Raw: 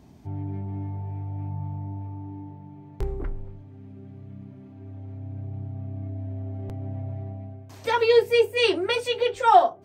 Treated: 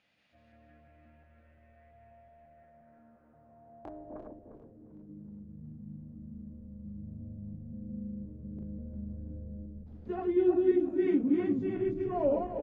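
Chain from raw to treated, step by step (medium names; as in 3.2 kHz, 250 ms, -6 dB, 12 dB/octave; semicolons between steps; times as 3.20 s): backward echo that repeats 137 ms, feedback 47%, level -2.5 dB; band-pass sweep 3.1 kHz -> 280 Hz, 1.86–4.24 s; tape speed -22%; frequency-shifting echo 373 ms, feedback 62%, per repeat -83 Hz, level -15 dB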